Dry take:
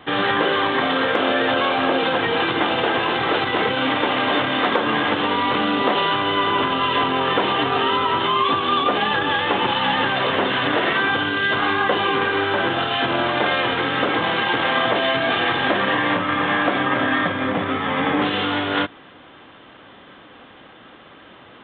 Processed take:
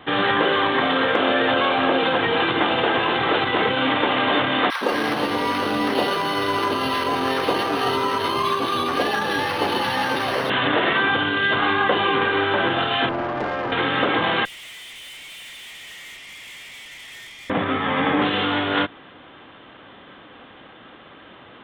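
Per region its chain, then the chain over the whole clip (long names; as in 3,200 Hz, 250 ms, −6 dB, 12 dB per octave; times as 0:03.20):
0:04.70–0:10.50: three-band delay without the direct sound highs, mids, lows 110/220 ms, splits 170/1,100 Hz + linearly interpolated sample-rate reduction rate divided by 6×
0:13.09–0:13.72: low-pass filter 1,300 Hz + tube saturation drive 19 dB, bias 0.4
0:14.45–0:17.50: Chebyshev high-pass filter 1,900 Hz, order 8 + tube saturation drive 38 dB, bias 0.7
whole clip: no processing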